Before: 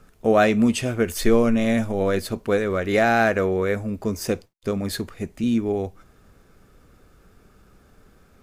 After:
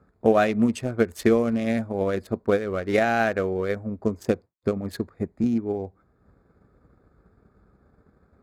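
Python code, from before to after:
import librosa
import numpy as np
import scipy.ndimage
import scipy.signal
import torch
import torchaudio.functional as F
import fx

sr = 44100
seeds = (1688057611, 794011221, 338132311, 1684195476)

y = fx.wiener(x, sr, points=15)
y = scipy.signal.sosfilt(scipy.signal.butter(4, 46.0, 'highpass', fs=sr, output='sos'), y)
y = fx.transient(y, sr, attack_db=7, sustain_db=-4)
y = y * 10.0 ** (-4.0 / 20.0)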